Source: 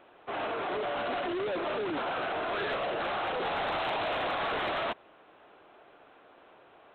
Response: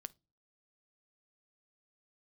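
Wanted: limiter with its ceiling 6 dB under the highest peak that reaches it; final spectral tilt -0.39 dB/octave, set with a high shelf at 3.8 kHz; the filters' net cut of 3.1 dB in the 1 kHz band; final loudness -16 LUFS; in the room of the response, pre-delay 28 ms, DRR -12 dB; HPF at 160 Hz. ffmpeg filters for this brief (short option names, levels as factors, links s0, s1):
-filter_complex "[0:a]highpass=160,equalizer=f=1000:t=o:g=-5,highshelf=f=3800:g=7.5,alimiter=level_in=1.78:limit=0.0631:level=0:latency=1,volume=0.562,asplit=2[s0][s1];[1:a]atrim=start_sample=2205,adelay=28[s2];[s1][s2]afir=irnorm=-1:irlink=0,volume=7.08[s3];[s0][s3]amix=inputs=2:normalize=0,volume=2.37"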